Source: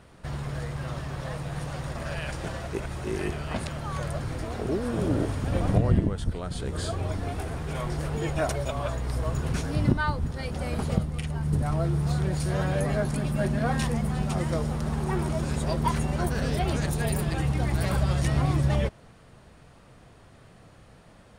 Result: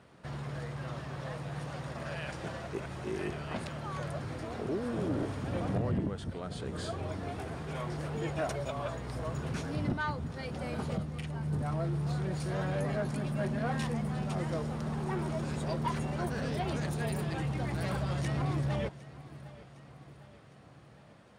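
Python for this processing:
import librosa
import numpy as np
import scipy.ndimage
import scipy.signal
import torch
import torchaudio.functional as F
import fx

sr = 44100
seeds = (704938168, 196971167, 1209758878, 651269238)

y = scipy.signal.sosfilt(scipy.signal.butter(2, 110.0, 'highpass', fs=sr, output='sos'), x)
y = fx.high_shelf(y, sr, hz=8600.0, db=-11.0)
y = fx.echo_feedback(y, sr, ms=758, feedback_pct=56, wet_db=-20.0)
y = 10.0 ** (-20.5 / 20.0) * np.tanh(y / 10.0 ** (-20.5 / 20.0))
y = y * librosa.db_to_amplitude(-4.0)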